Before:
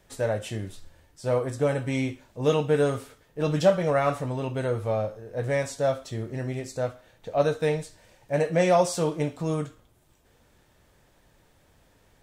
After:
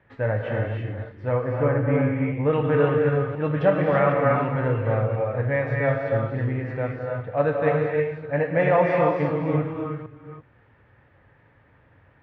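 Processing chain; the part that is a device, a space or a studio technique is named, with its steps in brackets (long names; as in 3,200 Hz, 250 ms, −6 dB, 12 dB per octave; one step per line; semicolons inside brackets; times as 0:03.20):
delay that plays each chunk backwards 258 ms, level −9.5 dB
bass cabinet (loudspeaker in its box 75–2,300 Hz, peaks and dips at 110 Hz +6 dB, 180 Hz −5 dB, 390 Hz −5 dB, 660 Hz −5 dB, 1,800 Hz +4 dB)
0:01.47–0:02.53: low-pass filter 2,000 Hz 12 dB per octave
reverb whose tail is shaped and stops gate 360 ms rising, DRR 0.5 dB
level +2.5 dB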